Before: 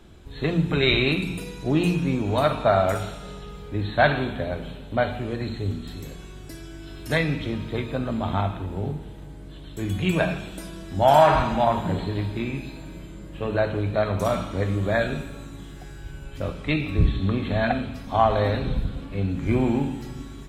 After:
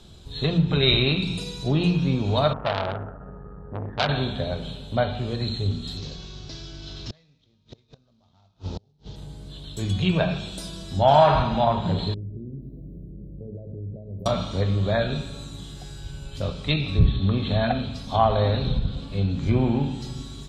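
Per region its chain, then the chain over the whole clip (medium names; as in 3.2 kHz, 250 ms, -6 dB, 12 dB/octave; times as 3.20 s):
2.53–4.09 s: brick-wall FIR low-pass 1.9 kHz + transformer saturation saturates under 2.3 kHz
5.97–9.16 s: CVSD coder 32 kbps + inverted gate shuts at -22 dBFS, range -37 dB
12.14–14.26 s: compression 3:1, threshold -35 dBFS + inverse Chebyshev band-stop 1.1–9.3 kHz, stop band 50 dB
whole clip: peaking EQ 310 Hz -7 dB 0.3 oct; low-pass that closes with the level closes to 2.8 kHz, closed at -18.5 dBFS; graphic EQ 125/2000/4000/8000 Hz +4/-8/+12/+4 dB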